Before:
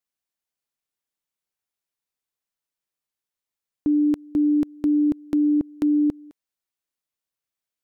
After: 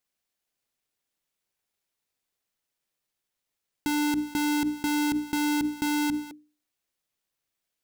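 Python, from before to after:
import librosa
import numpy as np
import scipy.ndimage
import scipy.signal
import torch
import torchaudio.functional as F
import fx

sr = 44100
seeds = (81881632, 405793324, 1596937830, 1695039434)

p1 = fx.halfwave_hold(x, sr)
p2 = fx.peak_eq(p1, sr, hz=1100.0, db=-3.0, octaves=1.0)
p3 = fx.hum_notches(p2, sr, base_hz=60, count=5)
p4 = fx.over_compress(p3, sr, threshold_db=-27.0, ratio=-0.5)
p5 = p3 + (p4 * librosa.db_to_amplitude(0.0))
p6 = fx.spec_erase(p5, sr, start_s=5.89, length_s=0.41, low_hz=320.0, high_hz=770.0)
y = p6 * librosa.db_to_amplitude(-8.5)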